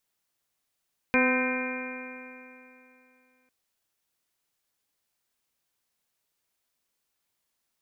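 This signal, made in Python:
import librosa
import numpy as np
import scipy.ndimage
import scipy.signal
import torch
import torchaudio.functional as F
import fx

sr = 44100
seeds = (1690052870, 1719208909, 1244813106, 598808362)

y = fx.additive_stiff(sr, length_s=2.35, hz=253.0, level_db=-23.5, upper_db=(-2, -10.0, -6.5, -14, -4, -10, -7.5, 0.0), decay_s=2.87, stiffness=0.0014)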